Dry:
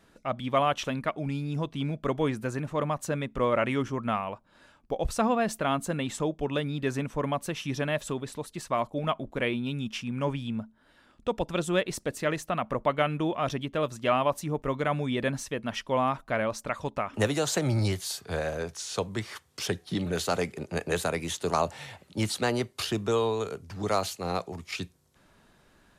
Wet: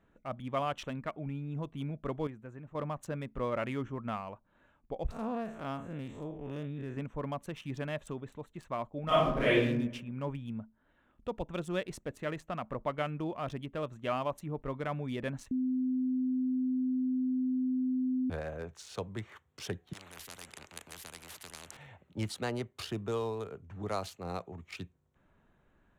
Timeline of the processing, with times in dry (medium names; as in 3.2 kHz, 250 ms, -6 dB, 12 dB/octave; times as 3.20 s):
2.27–2.75 s: gain -8 dB
5.11–6.97 s: spectral blur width 127 ms
9.05–9.63 s: reverb throw, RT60 0.88 s, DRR -11.5 dB
15.51–18.30 s: bleep 256 Hz -20.5 dBFS
19.93–21.77 s: spectrum-flattening compressor 10:1
whole clip: local Wiener filter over 9 samples; bass shelf 130 Hz +5.5 dB; trim -8.5 dB